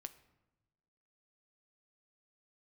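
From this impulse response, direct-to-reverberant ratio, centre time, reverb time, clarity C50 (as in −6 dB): 10.0 dB, 5 ms, non-exponential decay, 15.5 dB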